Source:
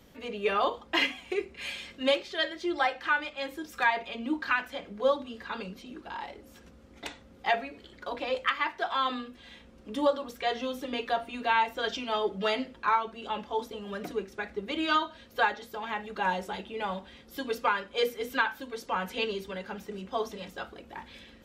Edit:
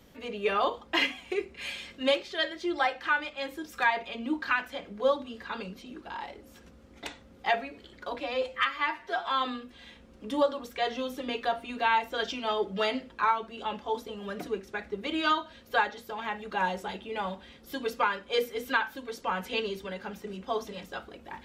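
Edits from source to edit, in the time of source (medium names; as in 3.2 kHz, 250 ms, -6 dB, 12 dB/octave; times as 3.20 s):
8.20–8.91 s: stretch 1.5×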